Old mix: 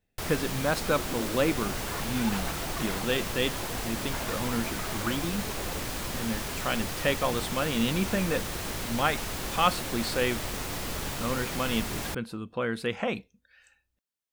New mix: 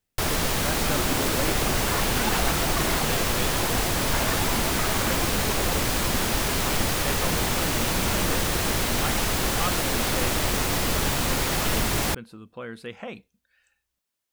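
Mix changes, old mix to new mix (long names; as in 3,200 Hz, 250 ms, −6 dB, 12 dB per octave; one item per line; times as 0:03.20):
speech −7.0 dB
first sound +9.5 dB
second sound +8.0 dB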